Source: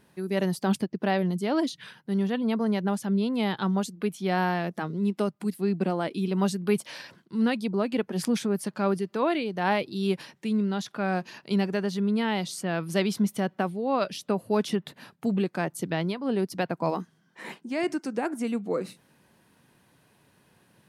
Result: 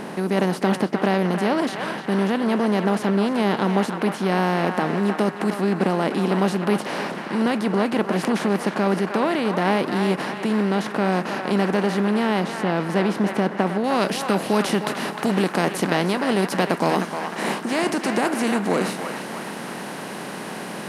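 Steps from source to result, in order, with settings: spectral levelling over time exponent 0.4; treble shelf 3.1 kHz -6 dB, from 12.40 s -11.5 dB, from 13.84 s +2.5 dB; band-passed feedback delay 308 ms, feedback 65%, band-pass 1.5 kHz, level -4.5 dB

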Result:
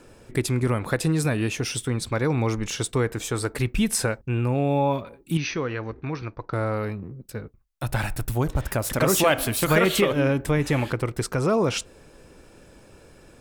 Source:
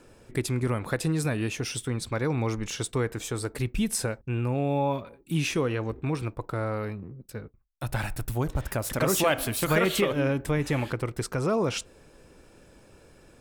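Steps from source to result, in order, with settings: 3.32–4.15 s: peaking EQ 1.5 kHz +3.5 dB 2.1 oct; 5.37–6.53 s: rippled Chebyshev low-pass 6.2 kHz, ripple 6 dB; trim +4 dB

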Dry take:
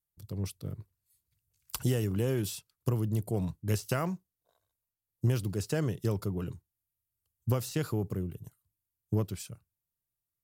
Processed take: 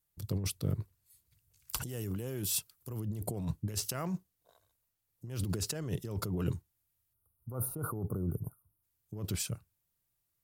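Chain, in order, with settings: 1.89–3.00 s: treble shelf 8.7 kHz +10.5 dB; 7.14–8.83 s: time-frequency box 1.5–8.9 kHz -28 dB; compressor with a negative ratio -37 dBFS, ratio -1; trim +1.5 dB

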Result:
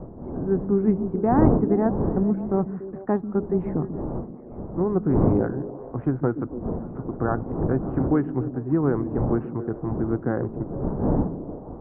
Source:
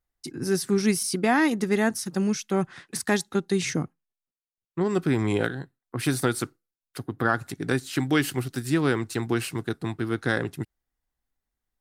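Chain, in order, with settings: wind noise 340 Hz -31 dBFS; inverse Chebyshev low-pass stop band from 4.7 kHz, stop band 70 dB; repeats whose band climbs or falls 144 ms, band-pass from 200 Hz, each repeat 0.7 oct, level -7 dB; trim +1.5 dB

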